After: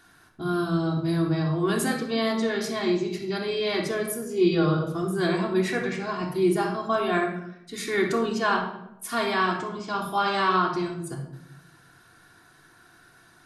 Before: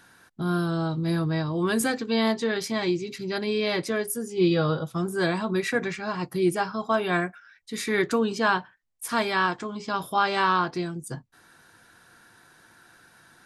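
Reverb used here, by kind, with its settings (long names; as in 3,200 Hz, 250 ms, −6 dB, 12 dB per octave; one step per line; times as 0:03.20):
rectangular room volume 2,300 cubic metres, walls furnished, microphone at 3.3 metres
level −3.5 dB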